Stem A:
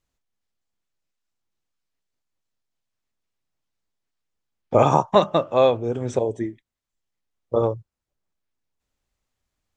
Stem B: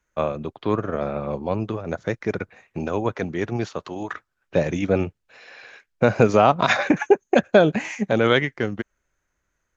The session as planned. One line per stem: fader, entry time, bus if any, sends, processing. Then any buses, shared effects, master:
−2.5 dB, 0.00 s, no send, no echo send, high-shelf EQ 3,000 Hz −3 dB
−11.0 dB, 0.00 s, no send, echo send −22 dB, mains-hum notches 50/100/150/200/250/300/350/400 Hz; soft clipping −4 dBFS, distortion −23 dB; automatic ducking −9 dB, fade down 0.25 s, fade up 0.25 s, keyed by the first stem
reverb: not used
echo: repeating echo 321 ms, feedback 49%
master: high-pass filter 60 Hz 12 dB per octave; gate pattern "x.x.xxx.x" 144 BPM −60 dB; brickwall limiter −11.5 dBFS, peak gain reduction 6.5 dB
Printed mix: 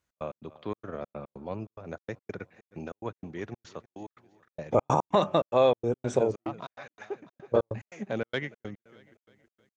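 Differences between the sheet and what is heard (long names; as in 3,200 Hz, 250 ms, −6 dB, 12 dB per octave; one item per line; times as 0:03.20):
stem A: missing high-shelf EQ 3,000 Hz −3 dB
stem B: missing mains-hum notches 50/100/150/200/250/300/350/400 Hz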